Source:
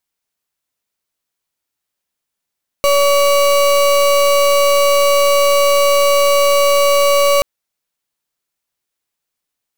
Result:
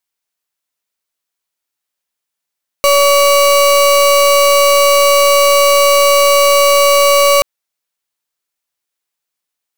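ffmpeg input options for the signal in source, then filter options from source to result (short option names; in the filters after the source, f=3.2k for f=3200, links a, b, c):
-f lavfi -i "aevalsrc='0.266*(2*lt(mod(568*t,1),0.33)-1)':d=4.58:s=44100"
-filter_complex "[0:a]lowshelf=f=370:g=-8,asplit=2[a][b];[b]acrusher=bits=3:mix=0:aa=0.000001,volume=-3dB[c];[a][c]amix=inputs=2:normalize=0"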